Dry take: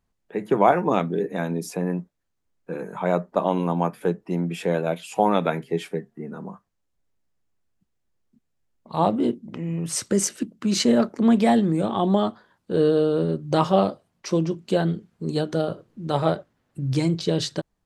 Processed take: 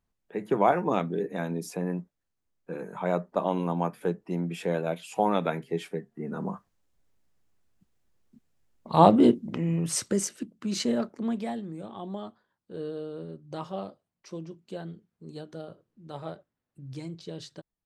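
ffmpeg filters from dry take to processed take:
-af "volume=4dB,afade=t=in:st=6.1:d=0.4:silence=0.354813,afade=t=out:st=9.31:d=0.97:silence=0.251189,afade=t=out:st=10.87:d=0.7:silence=0.375837"

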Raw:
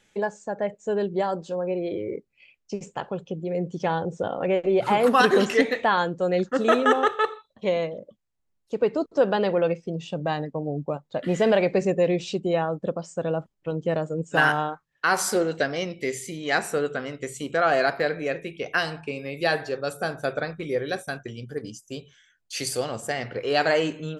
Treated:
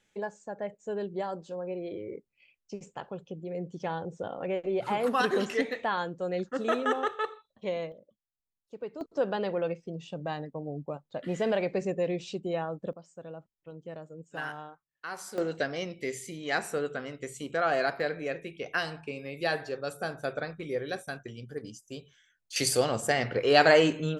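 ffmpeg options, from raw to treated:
-af "asetnsamples=n=441:p=0,asendcmd='7.92 volume volume -16dB;9.01 volume volume -8dB;12.93 volume volume -17dB;15.38 volume volume -6dB;22.56 volume volume 2dB',volume=-8.5dB"

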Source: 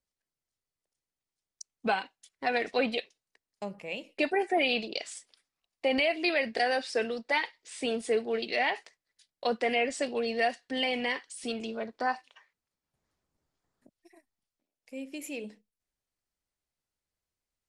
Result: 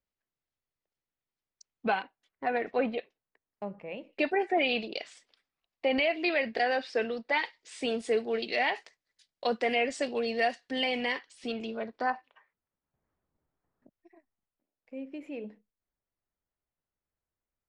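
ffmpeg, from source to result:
-af "asetnsamples=n=441:p=0,asendcmd='2.02 lowpass f 1700;4.13 lowpass f 3700;7.39 lowpass f 7200;11.19 lowpass f 4000;12.1 lowpass f 1700',lowpass=3.2k"

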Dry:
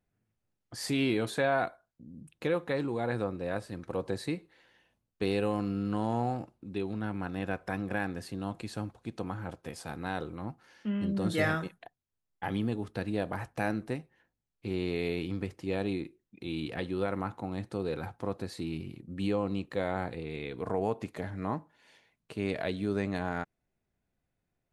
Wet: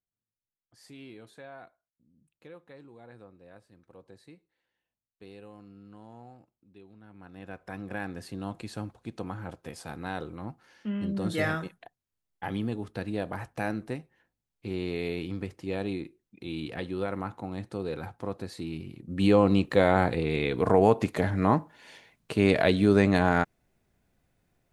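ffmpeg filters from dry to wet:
-af "volume=10.5dB,afade=t=in:st=7.07:d=0.36:silence=0.375837,afade=t=in:st=7.43:d=0.92:silence=0.316228,afade=t=in:st=18.96:d=0.43:silence=0.298538"

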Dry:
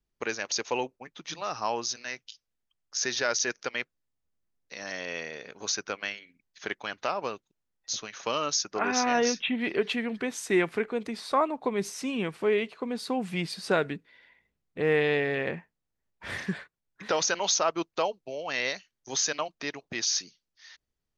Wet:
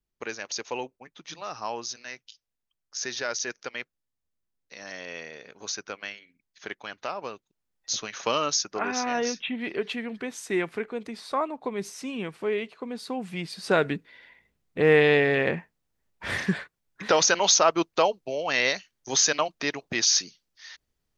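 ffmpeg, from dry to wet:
-af "volume=13.5dB,afade=t=in:st=7.34:d=0.83:silence=0.398107,afade=t=out:st=8.17:d=0.79:silence=0.421697,afade=t=in:st=13.51:d=0.45:silence=0.375837"

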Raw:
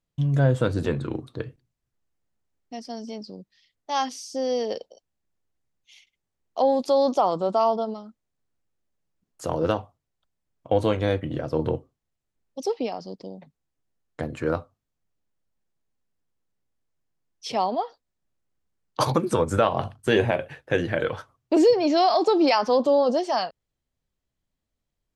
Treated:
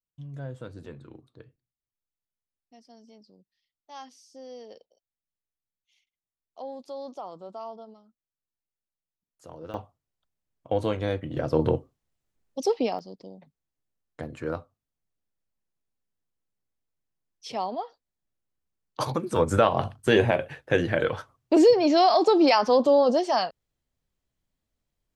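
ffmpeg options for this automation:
-af "asetnsamples=n=441:p=0,asendcmd='9.74 volume volume -4.5dB;11.37 volume volume 2dB;12.99 volume volume -6dB;19.36 volume volume 0.5dB',volume=-17.5dB"

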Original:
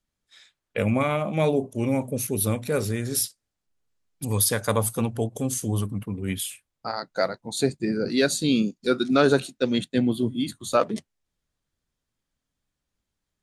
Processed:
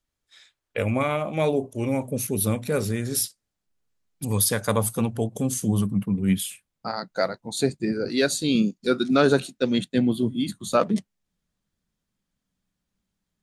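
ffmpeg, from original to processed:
-af "asetnsamples=n=441:p=0,asendcmd='2.11 equalizer g 4;5.29 equalizer g 10.5;7.12 equalizer g 1.5;7.93 equalizer g -7.5;8.55 equalizer g 4;10.48 equalizer g 11.5',equalizer=f=190:t=o:w=0.46:g=-7.5"

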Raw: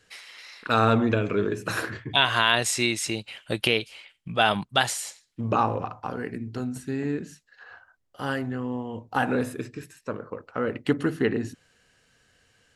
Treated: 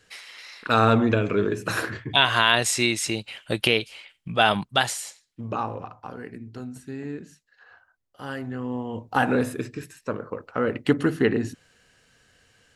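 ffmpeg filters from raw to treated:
-af "volume=10.5dB,afade=t=out:st=4.55:d=0.93:silence=0.421697,afade=t=in:st=8.29:d=0.68:silence=0.375837"

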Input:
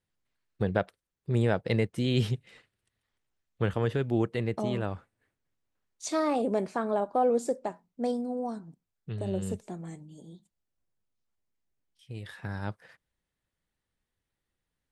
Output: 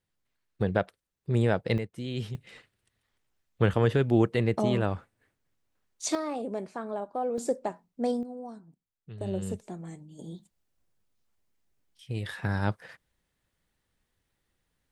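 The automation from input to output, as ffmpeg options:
-af "asetnsamples=n=441:p=0,asendcmd='1.78 volume volume -7.5dB;2.35 volume volume 4.5dB;6.15 volume volume -6dB;7.38 volume volume 1.5dB;8.23 volume volume -7.5dB;9.21 volume volume -0.5dB;10.19 volume volume 7dB',volume=1dB"

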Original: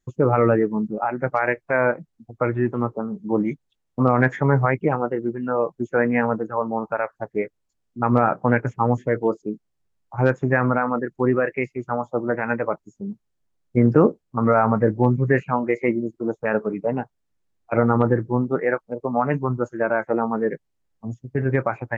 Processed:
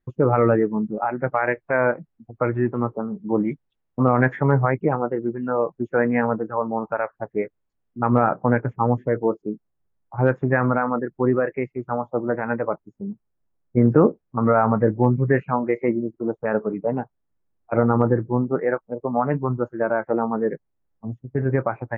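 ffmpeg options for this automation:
-af "asetnsamples=n=441:p=0,asendcmd='4.51 lowpass f 1700;5.23 lowpass f 2100;8.29 lowpass f 1500;10.28 lowpass f 2100;11.03 lowpass f 1500;13.82 lowpass f 1900;15.77 lowpass f 1500',lowpass=2.3k"

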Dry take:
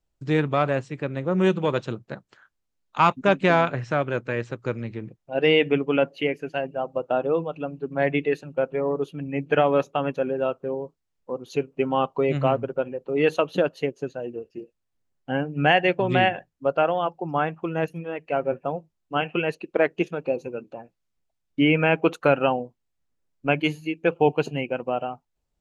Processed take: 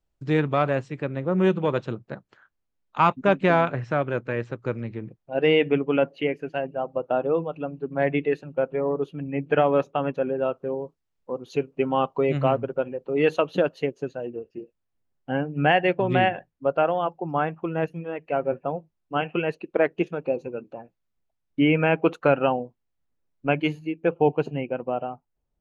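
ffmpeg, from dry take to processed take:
-af "asetnsamples=n=441:p=0,asendcmd='1.06 lowpass f 2400;10.54 lowpass f 4800;14.27 lowpass f 2400;23.79 lowpass f 1200',lowpass=f=4.5k:p=1"

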